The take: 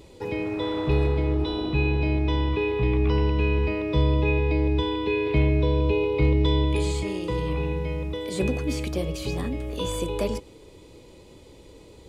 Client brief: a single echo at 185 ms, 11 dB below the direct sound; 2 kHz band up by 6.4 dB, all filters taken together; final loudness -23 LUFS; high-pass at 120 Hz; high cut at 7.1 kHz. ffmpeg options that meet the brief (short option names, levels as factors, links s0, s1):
-af "highpass=120,lowpass=7100,equalizer=f=2000:t=o:g=8.5,aecho=1:1:185:0.282,volume=1.33"